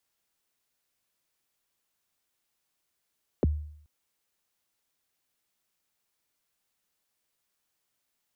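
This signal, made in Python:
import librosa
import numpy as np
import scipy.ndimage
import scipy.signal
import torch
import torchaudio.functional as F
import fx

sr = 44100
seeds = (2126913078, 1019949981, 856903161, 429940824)

y = fx.drum_kick(sr, seeds[0], length_s=0.43, level_db=-18, start_hz=590.0, end_hz=75.0, sweep_ms=21.0, decay_s=0.65, click=False)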